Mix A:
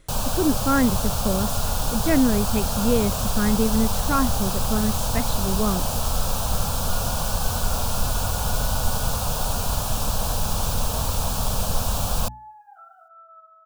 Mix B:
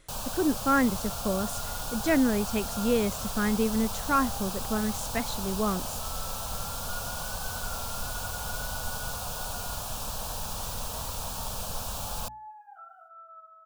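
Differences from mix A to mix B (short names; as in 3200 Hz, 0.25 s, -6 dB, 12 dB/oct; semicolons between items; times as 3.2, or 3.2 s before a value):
first sound -7.5 dB; master: add low shelf 440 Hz -6.5 dB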